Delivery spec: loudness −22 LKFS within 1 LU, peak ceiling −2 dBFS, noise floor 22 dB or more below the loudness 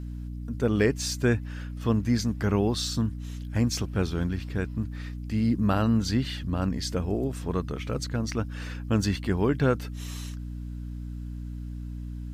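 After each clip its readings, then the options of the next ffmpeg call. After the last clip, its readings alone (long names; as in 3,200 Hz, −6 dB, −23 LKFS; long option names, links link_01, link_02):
mains hum 60 Hz; hum harmonics up to 300 Hz; level of the hum −33 dBFS; integrated loudness −28.5 LKFS; sample peak −10.0 dBFS; target loudness −22.0 LKFS
→ -af "bandreject=frequency=60:width_type=h:width=6,bandreject=frequency=120:width_type=h:width=6,bandreject=frequency=180:width_type=h:width=6,bandreject=frequency=240:width_type=h:width=6,bandreject=frequency=300:width_type=h:width=6"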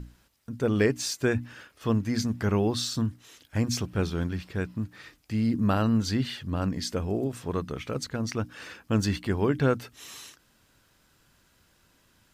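mains hum none found; integrated loudness −28.5 LKFS; sample peak −11.0 dBFS; target loudness −22.0 LKFS
→ -af "volume=6.5dB"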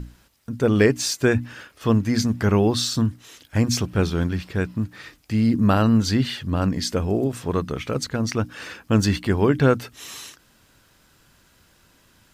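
integrated loudness −22.0 LKFS; sample peak −4.5 dBFS; background noise floor −59 dBFS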